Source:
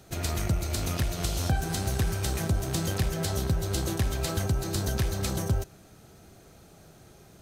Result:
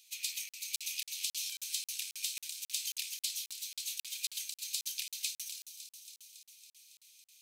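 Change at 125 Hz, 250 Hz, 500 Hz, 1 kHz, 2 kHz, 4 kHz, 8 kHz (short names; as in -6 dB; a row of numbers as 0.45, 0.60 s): under -40 dB, under -40 dB, under -40 dB, under -40 dB, -8.5 dB, -0.5 dB, -1.0 dB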